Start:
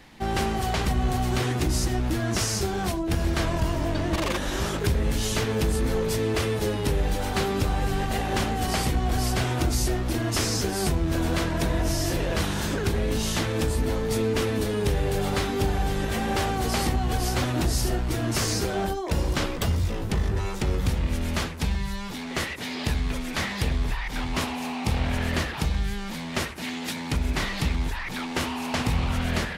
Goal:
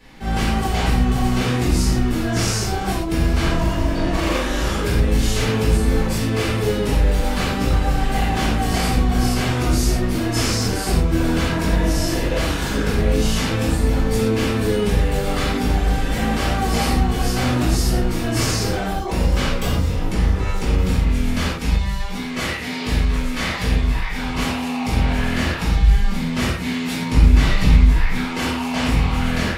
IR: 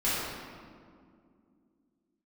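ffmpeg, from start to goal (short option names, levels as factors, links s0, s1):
-filter_complex "[0:a]asettb=1/sr,asplit=3[s0][s1][s2];[s0]atrim=end=25.764[s3];[s1]atrim=start=25.76:end=28.24,asetpts=PTS-STARTPTS,afade=t=in:d=0.004:c=qsin,afade=t=out:st=2.476:d=0.004:c=qsin,lowshelf=f=220:g=7.5[s4];[s2]atrim=start=28.236[s5];[s3][s4]acrossfade=d=0.004:c1=hsin:c2=qsin[s6];[s6][s5]acrossfade=d=0.004:c1=qsin:c2=hsin[s7];[1:a]atrim=start_sample=2205,atrim=end_sample=6174[s8];[s7][s8]afir=irnorm=-1:irlink=0,volume=0.631"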